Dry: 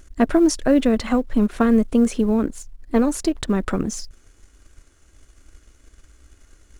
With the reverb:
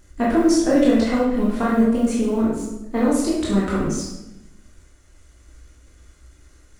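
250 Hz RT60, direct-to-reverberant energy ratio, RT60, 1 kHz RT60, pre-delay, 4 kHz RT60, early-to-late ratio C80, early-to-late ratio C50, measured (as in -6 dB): 1.2 s, -6.5 dB, 0.90 s, 0.90 s, 15 ms, 0.70 s, 4.5 dB, 0.5 dB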